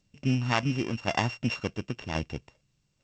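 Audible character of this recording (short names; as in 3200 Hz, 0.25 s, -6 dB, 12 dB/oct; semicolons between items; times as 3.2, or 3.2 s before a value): a buzz of ramps at a fixed pitch in blocks of 16 samples; tremolo saw down 0.93 Hz, depth 45%; G.722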